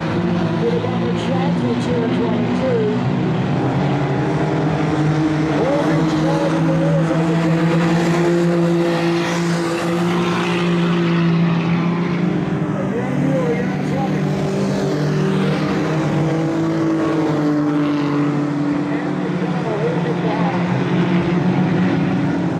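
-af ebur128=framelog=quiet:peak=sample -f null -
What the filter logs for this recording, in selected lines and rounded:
Integrated loudness:
  I:         -17.9 LUFS
  Threshold: -27.9 LUFS
Loudness range:
  LRA:         2.4 LU
  Threshold: -37.8 LUFS
  LRA low:   -18.9 LUFS
  LRA high:  -16.5 LUFS
Sample peak:
  Peak:       -6.1 dBFS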